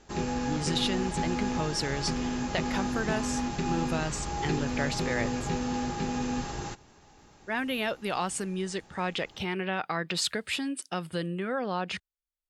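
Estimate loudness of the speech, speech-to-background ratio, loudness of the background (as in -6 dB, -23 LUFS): -32.5 LUFS, -0.5 dB, -32.0 LUFS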